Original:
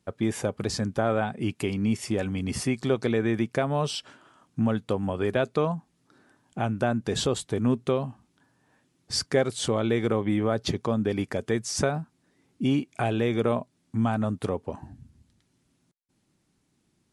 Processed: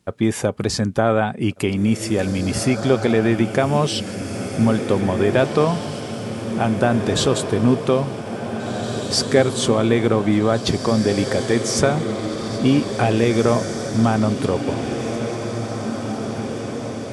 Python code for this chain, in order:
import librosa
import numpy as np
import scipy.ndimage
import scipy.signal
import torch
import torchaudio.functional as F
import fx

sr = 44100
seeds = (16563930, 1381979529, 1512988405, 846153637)

y = fx.echo_diffused(x, sr, ms=1939, feedback_pct=62, wet_db=-7.5)
y = y * librosa.db_to_amplitude(7.5)